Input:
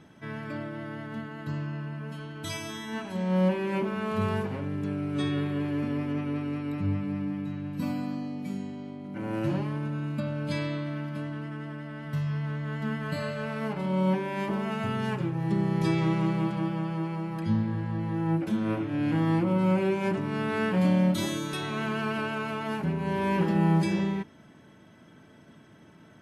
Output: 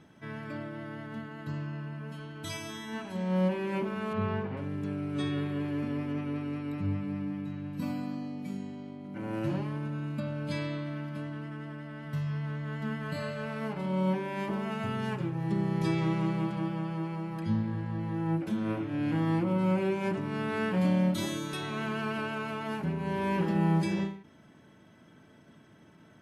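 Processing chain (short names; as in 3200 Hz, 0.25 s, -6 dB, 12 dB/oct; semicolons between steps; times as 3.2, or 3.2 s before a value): 4.13–4.57 LPF 3000 Hz 12 dB/oct; ending taper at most 120 dB/s; gain -3 dB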